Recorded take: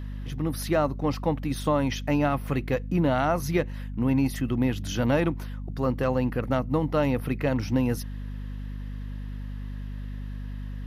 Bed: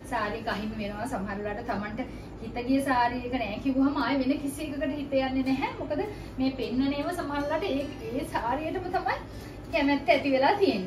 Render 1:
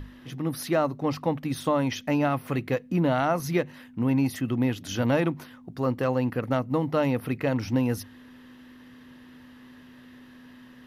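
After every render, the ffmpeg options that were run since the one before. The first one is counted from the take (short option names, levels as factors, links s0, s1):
-af "bandreject=f=50:t=h:w=6,bandreject=f=100:t=h:w=6,bandreject=f=150:t=h:w=6,bandreject=f=200:t=h:w=6"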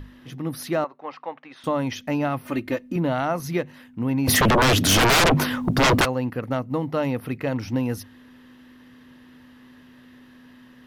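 -filter_complex "[0:a]asettb=1/sr,asplit=3[s0][s1][s2];[s0]atrim=end=0.844[s3];[s1]atrim=start=0.84:end=1.64,asetpts=PTS-STARTPTS,afade=t=in:d=0.004:c=qsin,afade=t=out:st=0.796:d=0.004:c=qsin,highpass=730,lowpass=2400[s4];[s2]atrim=start=1.636[s5];[s3][s4]acrossfade=d=0.004:c1=hsin:c2=qsin[s6];[s6][s5]acrossfade=d=0.004:c1=qsin:c2=hsin,asettb=1/sr,asplit=3[s7][s8][s9];[s7]atrim=end=2.454[s10];[s8]atrim=start=2.45:end=2.96,asetpts=PTS-STARTPTS,afade=t=in:d=0.004:c=qsin,afade=t=out:st=0.506:d=0.004:c=qsin,aecho=1:1:3.3:0.77,atrim=end_sample=22491[s11];[s9]atrim=start=2.956[s12];[s10][s11]acrossfade=d=0.004:c1=hsin:c2=qsin[s13];[s13][s12]acrossfade=d=0.004:c1=qsin:c2=hsin,asplit=3[s14][s15][s16];[s14]afade=t=out:st=4.27:d=0.02[s17];[s15]aeval=exprs='0.211*sin(PI/2*7.94*val(0)/0.211)':c=same,afade=t=in:st=4.27:d=0.02,afade=t=out:st=6.04:d=0.02[s18];[s16]afade=t=in:st=6.04:d=0.02[s19];[s17][s18][s19]amix=inputs=3:normalize=0"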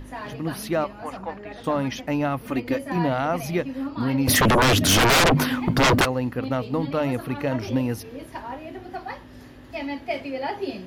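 -filter_complex "[1:a]volume=0.501[s0];[0:a][s0]amix=inputs=2:normalize=0"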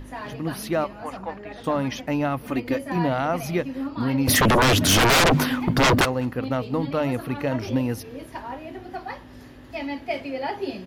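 -filter_complex "[0:a]asplit=2[s0][s1];[s1]adelay=204.1,volume=0.0501,highshelf=f=4000:g=-4.59[s2];[s0][s2]amix=inputs=2:normalize=0"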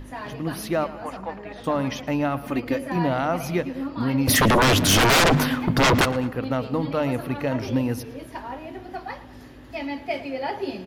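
-filter_complex "[0:a]asplit=2[s0][s1];[s1]adelay=113,lowpass=f=2900:p=1,volume=0.178,asplit=2[s2][s3];[s3]adelay=113,lowpass=f=2900:p=1,volume=0.53,asplit=2[s4][s5];[s5]adelay=113,lowpass=f=2900:p=1,volume=0.53,asplit=2[s6][s7];[s7]adelay=113,lowpass=f=2900:p=1,volume=0.53,asplit=2[s8][s9];[s9]adelay=113,lowpass=f=2900:p=1,volume=0.53[s10];[s0][s2][s4][s6][s8][s10]amix=inputs=6:normalize=0"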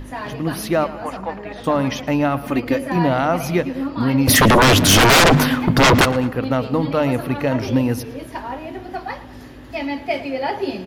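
-af "volume=1.88"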